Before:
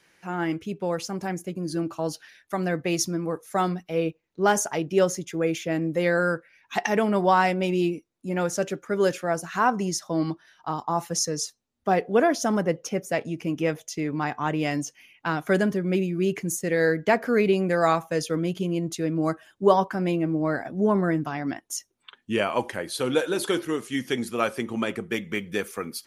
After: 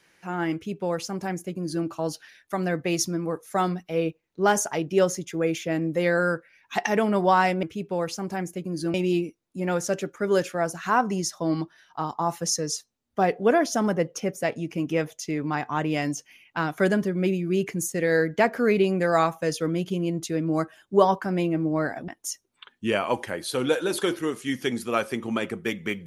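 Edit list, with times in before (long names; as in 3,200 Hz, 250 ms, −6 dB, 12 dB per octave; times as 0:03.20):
0:00.54–0:01.85: duplicate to 0:07.63
0:20.77–0:21.54: remove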